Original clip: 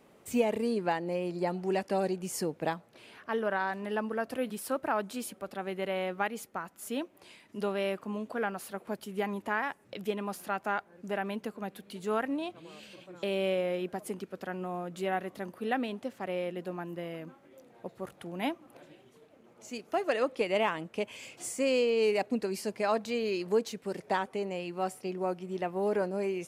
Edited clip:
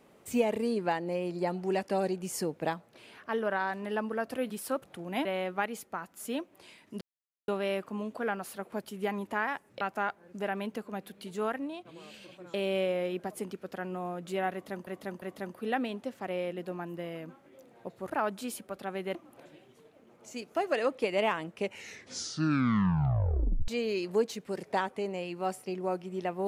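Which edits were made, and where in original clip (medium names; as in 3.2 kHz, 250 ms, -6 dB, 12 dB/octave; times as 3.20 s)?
4.82–5.87 s: swap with 18.09–18.52 s
7.63 s: insert silence 0.47 s
9.96–10.50 s: delete
11.98–12.54 s: fade out, to -7 dB
15.21–15.56 s: loop, 3 plays
20.92 s: tape stop 2.13 s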